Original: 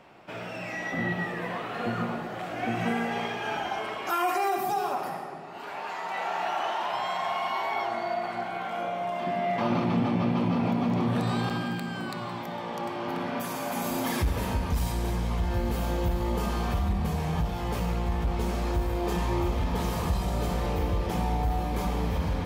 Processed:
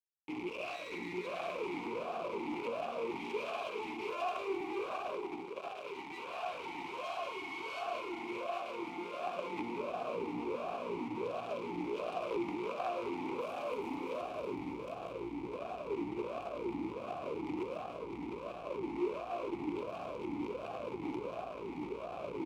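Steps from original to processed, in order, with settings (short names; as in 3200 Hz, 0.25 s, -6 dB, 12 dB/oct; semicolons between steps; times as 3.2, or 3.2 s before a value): spectral contrast raised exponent 1.6; band shelf 940 Hz -14 dB; limiter -27.5 dBFS, peak gain reduction 10 dB; compressor 5:1, threshold -37 dBFS, peak gain reduction 7 dB; bit-crush 7-bit; echo with dull and thin repeats by turns 0.318 s, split 1200 Hz, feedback 55%, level -7 dB; added harmonics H 7 -8 dB, 8 -15 dB, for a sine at -23 dBFS; on a send: echo 0.186 s -7 dB; on the sum: vowel sweep a-u 1.4 Hz; gain +10.5 dB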